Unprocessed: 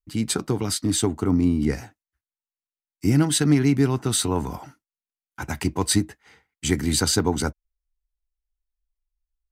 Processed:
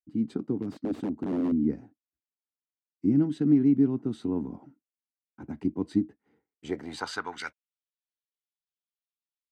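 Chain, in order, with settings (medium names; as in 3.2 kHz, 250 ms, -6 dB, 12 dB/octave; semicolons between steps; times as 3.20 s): dynamic bell 3.4 kHz, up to +6 dB, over -38 dBFS, Q 0.82; 0.62–1.52 s: integer overflow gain 15.5 dB; band-pass sweep 260 Hz -> 3.4 kHz, 6.32–7.74 s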